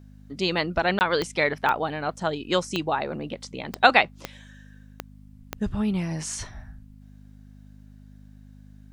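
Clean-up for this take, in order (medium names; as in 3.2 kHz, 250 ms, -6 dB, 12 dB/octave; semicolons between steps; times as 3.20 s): de-click; de-hum 51 Hz, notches 5; interpolate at 0.99 s, 19 ms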